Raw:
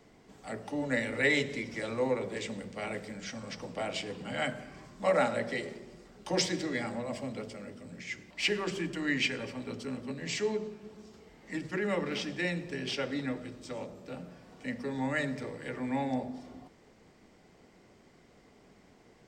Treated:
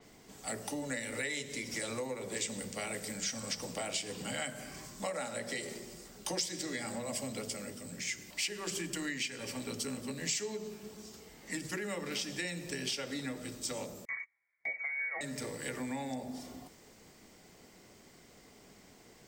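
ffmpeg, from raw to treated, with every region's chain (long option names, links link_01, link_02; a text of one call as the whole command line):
ffmpeg -i in.wav -filter_complex "[0:a]asettb=1/sr,asplit=3[link_01][link_02][link_03];[link_01]atrim=end=14.054[link_04];[link_02]atrim=start=14.05:end=15.21,asetpts=PTS-STARTPTS,afade=type=in:duration=0.004:curve=qsin,afade=type=out:start_time=1.156:duration=0.004:curve=qsin,lowshelf=frequency=210:width_type=q:width=3:gain=-7,lowpass=frequency=2100:width_type=q:width=0.5098,lowpass=frequency=2100:width_type=q:width=0.6013,lowpass=frequency=2100:width_type=q:width=0.9,lowpass=frequency=2100:width_type=q:width=2.563,afreqshift=-2500,agate=range=-32dB:threshold=-43dB:ratio=16:release=100:detection=peak[link_05];[link_03]atrim=start=15.206[link_06];[link_04][link_05]acrossfade=duration=0.004:curve1=hsin:curve2=qsin[link_07];[link_07][link_06]acrossfade=duration=0.004:curve1=qsin:curve2=hsin,aemphasis=mode=production:type=75kf,acompressor=threshold=-35dB:ratio=8,adynamicequalizer=threshold=0.00158:dfrequency=5200:dqfactor=0.7:tfrequency=5200:tqfactor=0.7:attack=5:release=100:ratio=0.375:range=3.5:mode=boostabove:tftype=highshelf" out.wav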